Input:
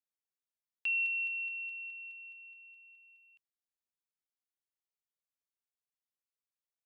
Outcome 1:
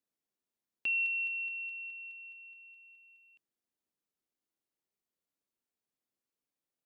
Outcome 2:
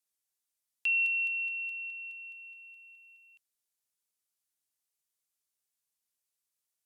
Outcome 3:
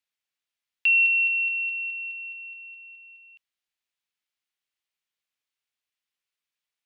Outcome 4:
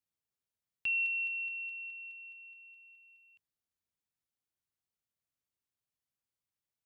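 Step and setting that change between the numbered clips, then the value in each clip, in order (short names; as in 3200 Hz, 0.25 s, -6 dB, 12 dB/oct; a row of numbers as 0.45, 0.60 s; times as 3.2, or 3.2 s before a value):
bell, frequency: 280, 10000, 2700, 99 Hz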